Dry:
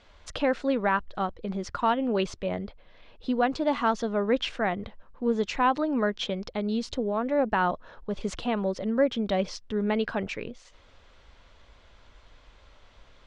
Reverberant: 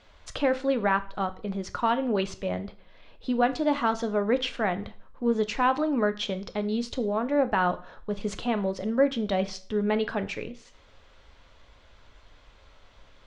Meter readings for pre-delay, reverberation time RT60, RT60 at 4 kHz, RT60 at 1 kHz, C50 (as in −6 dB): 4 ms, 0.45 s, 0.40 s, 0.45 s, 17.0 dB